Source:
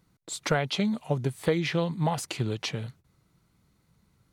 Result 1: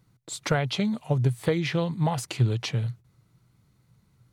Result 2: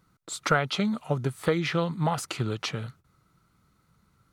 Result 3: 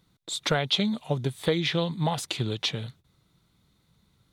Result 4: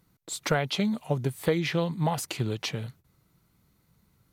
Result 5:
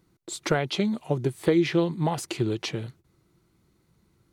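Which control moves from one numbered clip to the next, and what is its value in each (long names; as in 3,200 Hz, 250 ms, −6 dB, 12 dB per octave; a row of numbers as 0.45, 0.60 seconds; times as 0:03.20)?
parametric band, centre frequency: 120, 1,300, 3,600, 14,000, 350 Hertz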